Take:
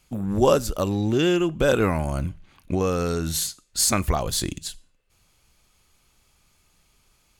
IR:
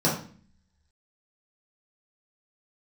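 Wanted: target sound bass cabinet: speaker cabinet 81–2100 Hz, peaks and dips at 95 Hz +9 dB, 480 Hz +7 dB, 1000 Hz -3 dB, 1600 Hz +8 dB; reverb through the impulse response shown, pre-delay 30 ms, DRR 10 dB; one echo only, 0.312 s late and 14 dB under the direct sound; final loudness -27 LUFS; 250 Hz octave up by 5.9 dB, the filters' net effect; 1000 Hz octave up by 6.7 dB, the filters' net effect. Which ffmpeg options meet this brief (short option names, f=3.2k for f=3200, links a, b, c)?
-filter_complex "[0:a]equalizer=f=250:t=o:g=7,equalizer=f=1k:t=o:g=8.5,aecho=1:1:312:0.2,asplit=2[a][b];[1:a]atrim=start_sample=2205,adelay=30[c];[b][c]afir=irnorm=-1:irlink=0,volume=-24dB[d];[a][d]amix=inputs=2:normalize=0,highpass=f=81:w=0.5412,highpass=f=81:w=1.3066,equalizer=f=95:t=q:w=4:g=9,equalizer=f=480:t=q:w=4:g=7,equalizer=f=1k:t=q:w=4:g=-3,equalizer=f=1.6k:t=q:w=4:g=8,lowpass=f=2.1k:w=0.5412,lowpass=f=2.1k:w=1.3066,volume=-10.5dB"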